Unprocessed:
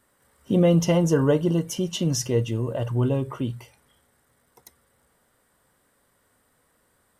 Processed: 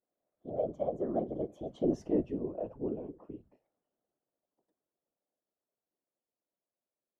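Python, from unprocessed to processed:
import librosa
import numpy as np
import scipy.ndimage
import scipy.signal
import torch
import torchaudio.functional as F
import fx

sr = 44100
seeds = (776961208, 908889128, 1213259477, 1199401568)

y = fx.doppler_pass(x, sr, speed_mps=35, closest_m=11.0, pass_at_s=2.04)
y = fx.double_bandpass(y, sr, hz=440.0, octaves=0.79)
y = fx.whisperise(y, sr, seeds[0])
y = y * librosa.db_to_amplitude(3.5)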